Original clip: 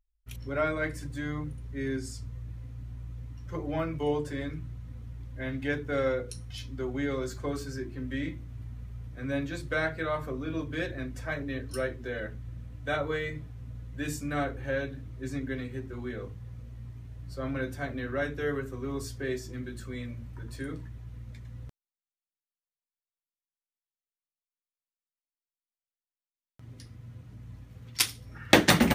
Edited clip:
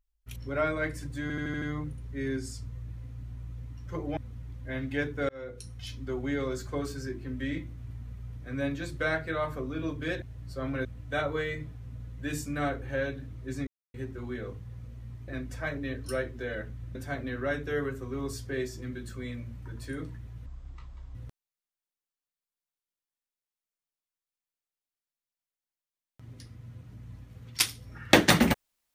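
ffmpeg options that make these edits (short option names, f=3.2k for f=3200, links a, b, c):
-filter_complex "[0:a]asplit=16[a][b][c][d][e][f][g][h][i][j][k][l][m][n][o][p];[a]atrim=end=1.302[q];[b]atrim=start=1.218:end=1.302[r];[c]atrim=start=1.218:end=1.302[s];[d]atrim=start=1.218:end=1.302[t];[e]atrim=start=1.218:end=1.302[u];[f]atrim=start=1.218:end=3.772[v];[g]atrim=start=4.878:end=6,asetpts=PTS-STARTPTS,afade=t=out:st=1.118:d=0.004:c=hsin[w];[h]atrim=start=6:end=10.932,asetpts=PTS-STARTPTS,afade=t=in:d=0.71:c=qsin[x];[i]atrim=start=17.028:end=17.662[y];[j]atrim=start=12.598:end=15.42,asetpts=PTS-STARTPTS,afade=t=out:st=2.818:d=0.004:c=hsin[z];[k]atrim=start=15.42:end=15.69,asetpts=PTS-STARTPTS,volume=0[aa];[l]atrim=start=15.69:end=17.032,asetpts=PTS-STARTPTS,afade=t=in:d=0.004:c=hsin[ab];[m]atrim=start=10.928:end=12.602[ac];[n]atrim=start=17.658:end=21.174[ad];[o]atrim=start=21.17:end=21.55,asetpts=PTS-STARTPTS,asetrate=24255,aresample=44100,atrim=end_sample=30469,asetpts=PTS-STARTPTS[ae];[p]atrim=start=21.546[af];[q][r]acrossfade=d=0.004:c1=hsin:c2=hsin[ag];[ag][s]acrossfade=d=0.004:c1=hsin:c2=hsin[ah];[ah][t]acrossfade=d=0.004:c1=hsin:c2=hsin[ai];[ai][u]acrossfade=d=0.004:c1=hsin:c2=hsin[aj];[aj][v]acrossfade=d=0.004:c1=hsin:c2=hsin[ak];[w][x]concat=n=2:v=0:a=1[al];[ak][al]acrossfade=d=0.004:c1=hsin:c2=hsin[am];[am][y]acrossfade=d=0.004:c1=hsin:c2=hsin[an];[z][aa][ab]concat=n=3:v=0:a=1[ao];[an][ao]acrossfade=d=0.004:c1=hsin:c2=hsin[ap];[ap][ac]acrossfade=d=0.004:c1=hsin:c2=hsin[aq];[aq][ad]acrossfade=d=0.004:c1=hsin:c2=hsin[ar];[ar][ae]acrossfade=d=0.004:c1=hsin:c2=hsin[as];[as][af]acrossfade=d=0.004:c1=hsin:c2=hsin"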